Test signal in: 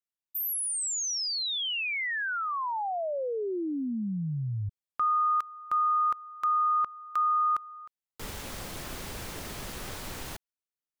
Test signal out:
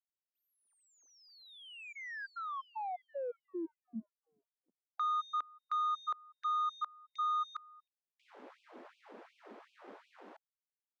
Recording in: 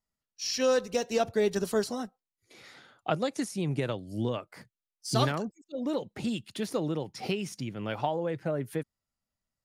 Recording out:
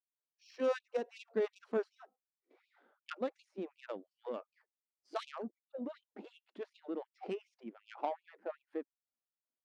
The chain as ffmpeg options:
-af "adynamicsmooth=sensitivity=1:basefreq=1000,afftfilt=real='re*gte(b*sr/1024,200*pow(2400/200,0.5+0.5*sin(2*PI*2.7*pts/sr)))':imag='im*gte(b*sr/1024,200*pow(2400/200,0.5+0.5*sin(2*PI*2.7*pts/sr)))':win_size=1024:overlap=0.75,volume=0.531"

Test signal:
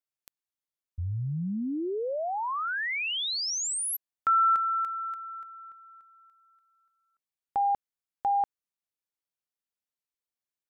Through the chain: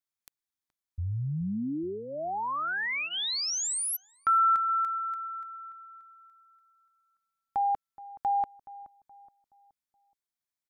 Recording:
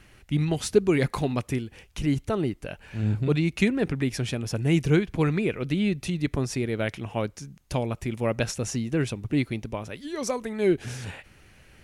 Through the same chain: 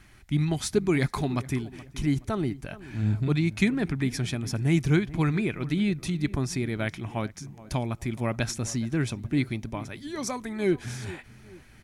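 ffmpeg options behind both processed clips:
-filter_complex "[0:a]equalizer=f=490:w=3:g=-10.5,bandreject=f=2800:w=8.2,asplit=2[s0][s1];[s1]adelay=423,lowpass=f=1300:p=1,volume=0.141,asplit=2[s2][s3];[s3]adelay=423,lowpass=f=1300:p=1,volume=0.43,asplit=2[s4][s5];[s5]adelay=423,lowpass=f=1300:p=1,volume=0.43,asplit=2[s6][s7];[s7]adelay=423,lowpass=f=1300:p=1,volume=0.43[s8];[s0][s2][s4][s6][s8]amix=inputs=5:normalize=0"

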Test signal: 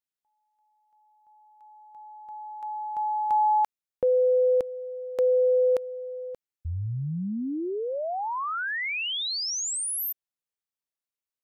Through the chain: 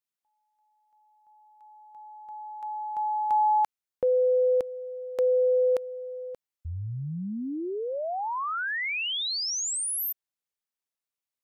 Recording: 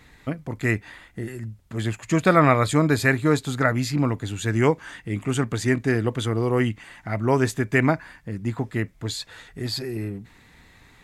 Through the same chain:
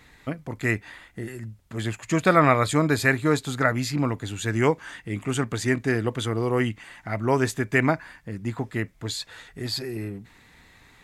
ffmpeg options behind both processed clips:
-af "lowshelf=f=370:g=-3.5"

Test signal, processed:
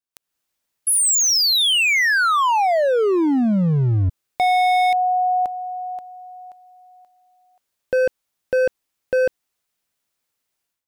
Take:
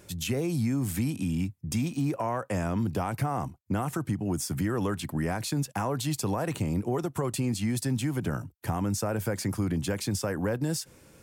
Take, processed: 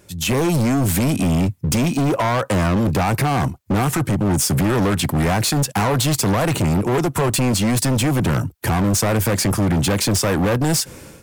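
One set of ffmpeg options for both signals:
-af "dynaudnorm=f=100:g=5:m=5.62,volume=7.5,asoftclip=hard,volume=0.133,volume=1.26"

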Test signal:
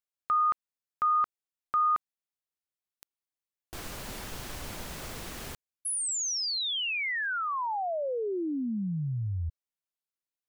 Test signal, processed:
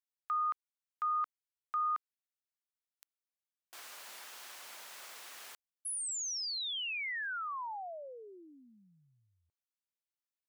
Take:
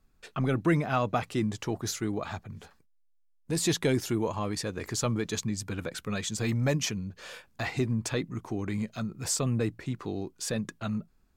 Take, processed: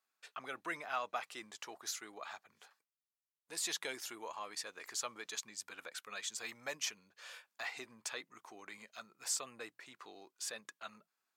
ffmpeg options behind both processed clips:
-af "highpass=880,volume=0.473"

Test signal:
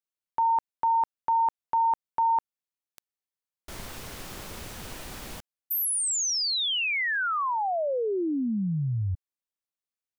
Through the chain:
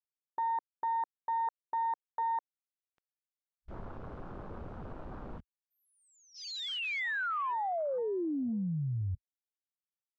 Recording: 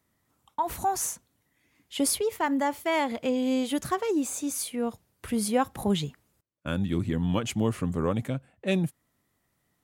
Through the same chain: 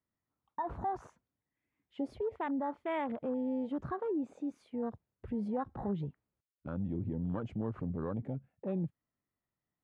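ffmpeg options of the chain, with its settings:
-af "lowpass=2100,acompressor=threshold=0.02:ratio=2.5:attack=0.27:release=119:knee=6:detection=peak,afwtdn=0.00794"

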